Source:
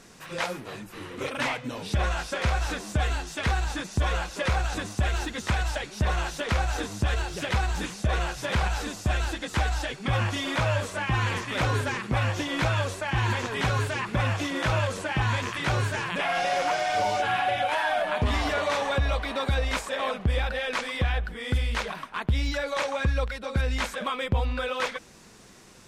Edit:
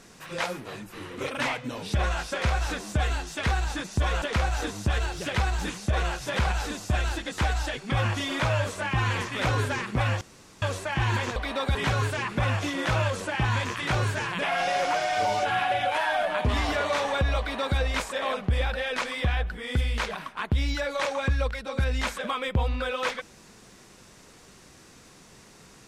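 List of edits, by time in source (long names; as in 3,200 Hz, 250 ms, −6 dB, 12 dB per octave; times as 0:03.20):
0:04.22–0:06.38: remove
0:12.37–0:12.78: fill with room tone
0:19.16–0:19.55: duplicate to 0:13.52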